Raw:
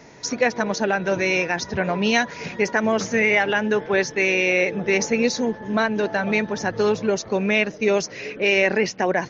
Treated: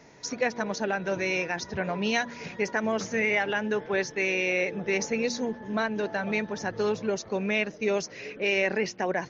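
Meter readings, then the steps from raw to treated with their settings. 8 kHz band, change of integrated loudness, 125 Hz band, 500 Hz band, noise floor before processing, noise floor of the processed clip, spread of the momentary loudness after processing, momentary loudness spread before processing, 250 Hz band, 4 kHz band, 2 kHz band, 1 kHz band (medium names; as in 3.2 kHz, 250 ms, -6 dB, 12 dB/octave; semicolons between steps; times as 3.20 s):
no reading, -7.0 dB, -7.0 dB, -7.0 dB, -40 dBFS, -47 dBFS, 6 LU, 6 LU, -7.5 dB, -7.0 dB, -7.0 dB, -7.0 dB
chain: de-hum 118.1 Hz, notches 3; trim -7 dB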